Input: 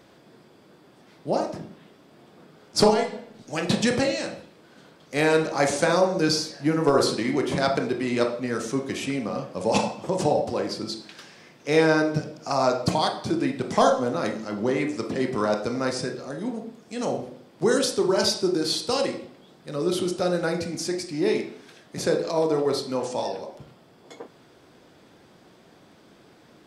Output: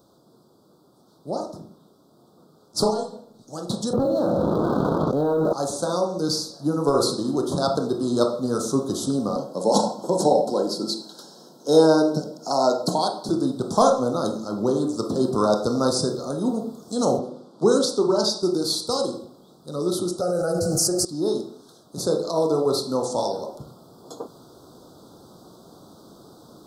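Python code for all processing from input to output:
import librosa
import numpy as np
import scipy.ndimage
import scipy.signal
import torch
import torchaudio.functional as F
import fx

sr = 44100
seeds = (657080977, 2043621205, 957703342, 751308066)

y = fx.chain(x, sr, fx.lowpass(hz=1300.0, slope=12),
    fx.leveller(passes=1),
    fx.env_flatten(amount_pct=100), at=(3.93, 5.53))
y = fx.chain(y, sr, fx.highpass(hz=160.0, slope=24),
    fx.notch_comb(f0_hz=1200.0), at=(9.36, 13.29))
y = fx.chain(y, sr, fx.highpass(hz=150.0, slope=24),
    fx.air_absorb(metres=62.0), at=(17.19, 18.43))
y = fx.chain(y, sr, fx.fixed_phaser(hz=990.0, stages=6),
    fx.env_flatten(amount_pct=100), at=(20.21, 21.05))
y = scipy.signal.sosfilt(scipy.signal.ellip(3, 1.0, 60, [1300.0, 3800.0], 'bandstop', fs=sr, output='sos'), y)
y = fx.high_shelf(y, sr, hz=11000.0, db=11.0)
y = fx.rider(y, sr, range_db=10, speed_s=2.0)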